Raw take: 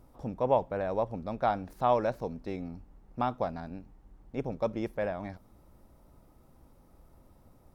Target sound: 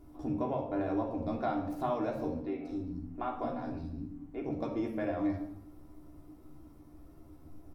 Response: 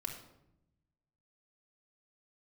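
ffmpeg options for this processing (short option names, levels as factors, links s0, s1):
-filter_complex "[0:a]equalizer=f=300:t=o:w=0.33:g=12.5,acompressor=threshold=0.0282:ratio=3,asplit=2[s0][s1];[s1]adelay=13,volume=0.562[s2];[s0][s2]amix=inputs=2:normalize=0,asettb=1/sr,asplit=3[s3][s4][s5];[s3]atrim=end=2.424[s6];[s4]atrim=start=2.42:end=4.42,asetpts=PTS-STARTPTS,afade=t=in:d=0.004:c=qsin,afade=t=out:st=1.996:d=0.004:c=qsin,acrossover=split=300|3700[s7][s8][s9];[s9]adelay=210[s10];[s7]adelay=260[s11];[s11][s8][s10]amix=inputs=3:normalize=0,atrim=end_sample=88200[s12];[s5]atrim=start=4.416[s13];[s6][s12]acrossfade=d=0.004:c1=hsin:c2=qsin[s14];[s14][s13]acrossfade=d=0.004:c1=qsin:c2=hsin[s15];[1:a]atrim=start_sample=2205,afade=t=out:st=0.43:d=0.01,atrim=end_sample=19404[s16];[s15][s16]afir=irnorm=-1:irlink=0"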